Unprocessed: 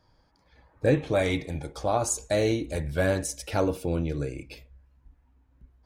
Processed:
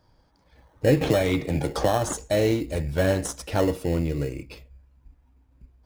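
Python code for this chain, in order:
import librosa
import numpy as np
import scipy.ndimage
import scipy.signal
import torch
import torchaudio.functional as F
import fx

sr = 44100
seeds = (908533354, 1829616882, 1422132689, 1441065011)

p1 = fx.sample_hold(x, sr, seeds[0], rate_hz=2400.0, jitter_pct=0)
p2 = x + (p1 * librosa.db_to_amplitude(-7.0))
y = fx.band_squash(p2, sr, depth_pct=100, at=(1.01, 2.13))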